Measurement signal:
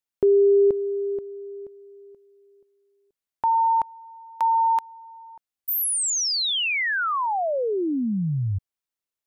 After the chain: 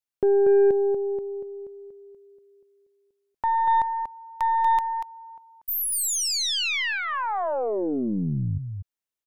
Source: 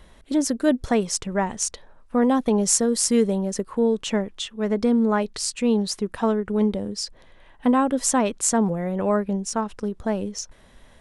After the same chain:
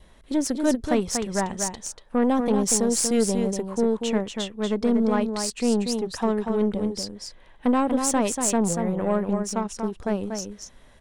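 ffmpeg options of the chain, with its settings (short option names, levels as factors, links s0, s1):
-af "aecho=1:1:238:0.501,adynamicequalizer=threshold=0.00708:dfrequency=1400:dqfactor=3.4:tfrequency=1400:tqfactor=3.4:attack=5:release=100:ratio=0.375:range=3.5:mode=cutabove:tftype=bell,aeval=exprs='0.631*(cos(1*acos(clip(val(0)/0.631,-1,1)))-cos(1*PI/2))+0.0251*(cos(8*acos(clip(val(0)/0.631,-1,1)))-cos(8*PI/2))':c=same,volume=0.75"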